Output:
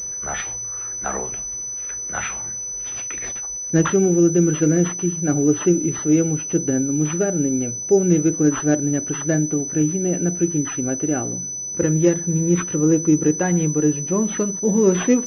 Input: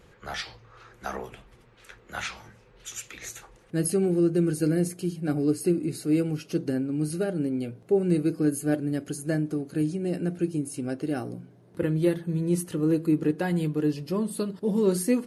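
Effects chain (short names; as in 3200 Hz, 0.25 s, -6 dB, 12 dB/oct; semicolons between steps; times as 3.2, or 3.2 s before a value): 3.07–3.84 transient shaper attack +5 dB, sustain -6 dB; pulse-width modulation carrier 6000 Hz; gain +7 dB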